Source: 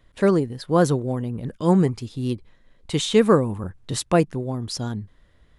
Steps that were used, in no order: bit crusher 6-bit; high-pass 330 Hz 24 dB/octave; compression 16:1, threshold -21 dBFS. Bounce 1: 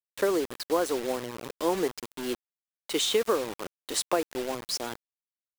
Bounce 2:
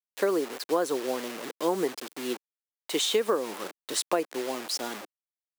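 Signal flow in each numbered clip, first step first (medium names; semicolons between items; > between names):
high-pass > compression > bit crusher; bit crusher > high-pass > compression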